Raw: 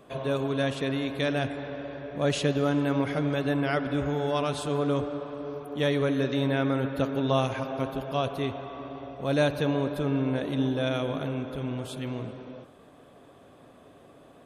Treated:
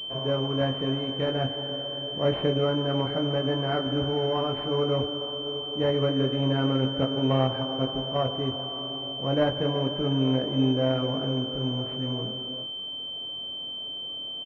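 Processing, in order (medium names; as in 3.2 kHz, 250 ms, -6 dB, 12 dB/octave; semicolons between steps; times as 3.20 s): doubling 23 ms -4 dB; class-D stage that switches slowly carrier 3.1 kHz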